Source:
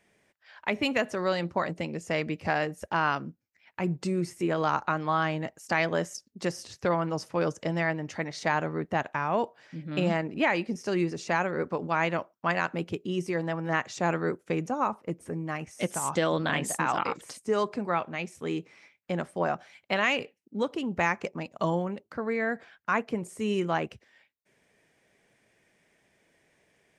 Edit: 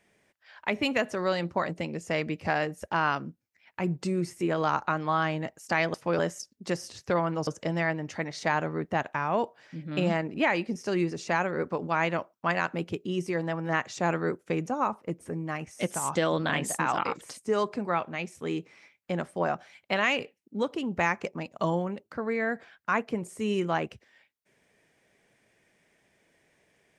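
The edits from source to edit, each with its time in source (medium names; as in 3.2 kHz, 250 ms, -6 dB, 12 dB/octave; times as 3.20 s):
7.22–7.47 s: move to 5.94 s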